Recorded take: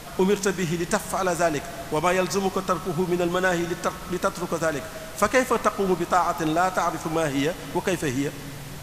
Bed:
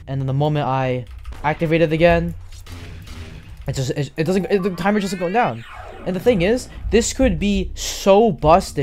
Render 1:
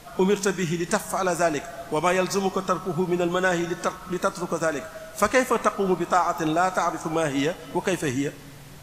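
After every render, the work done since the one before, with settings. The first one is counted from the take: noise print and reduce 7 dB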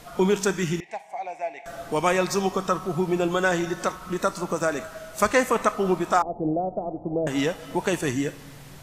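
0.80–1.66 s: two resonant band-passes 1.3 kHz, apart 1.5 oct; 6.22–7.27 s: steep low-pass 670 Hz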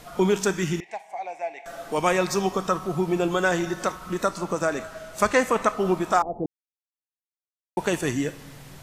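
0.84–1.98 s: peaking EQ 72 Hz -14 dB 1.9 oct; 4.27–5.80 s: treble shelf 12 kHz -8 dB; 6.46–7.77 s: mute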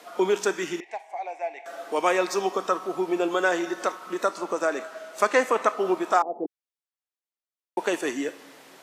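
high-pass 290 Hz 24 dB/octave; treble shelf 6 kHz -6.5 dB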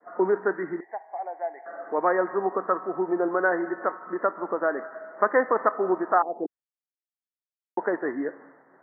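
expander -44 dBFS; steep low-pass 1.9 kHz 96 dB/octave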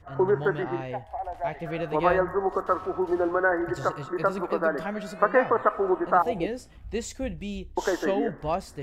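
add bed -15.5 dB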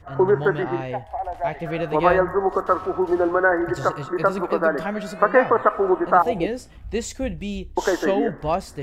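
trim +5 dB; peak limiter -2 dBFS, peak gain reduction 1.5 dB

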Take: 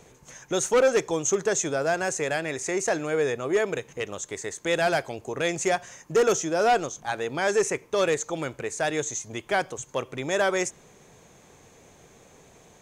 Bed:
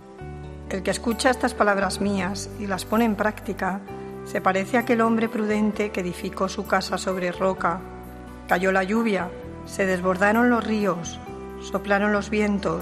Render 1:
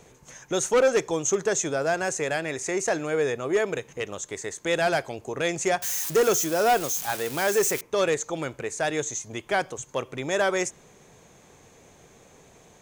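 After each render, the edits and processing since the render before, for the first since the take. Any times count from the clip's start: 5.82–7.81 s: zero-crossing glitches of -22 dBFS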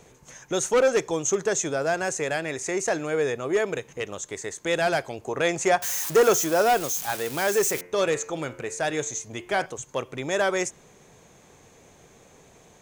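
5.25–6.62 s: peaking EQ 940 Hz +5 dB 2.2 oct; 7.64–9.66 s: de-hum 88.99 Hz, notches 33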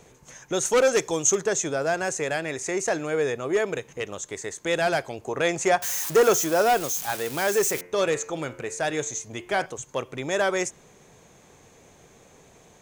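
0.65–1.41 s: treble shelf 3.5 kHz +7.5 dB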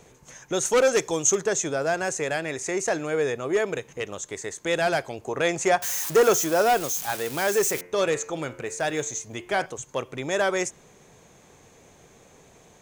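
8.66–9.37 s: block-companded coder 7-bit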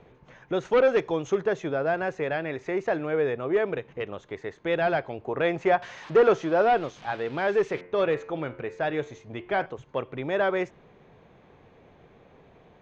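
low-pass 3.8 kHz 24 dB/octave; treble shelf 2.7 kHz -9.5 dB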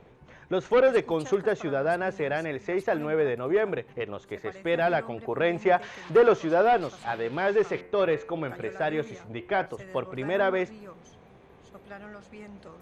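add bed -23 dB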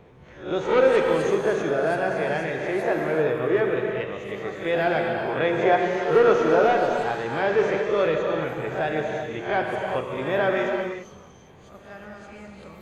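reverse spectral sustain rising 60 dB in 0.40 s; gated-style reverb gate 420 ms flat, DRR 1 dB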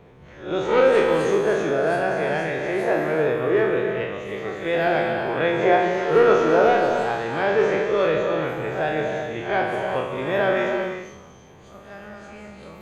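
spectral sustain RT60 0.68 s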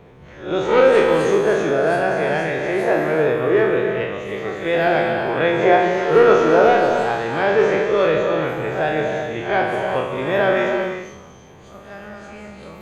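trim +3.5 dB

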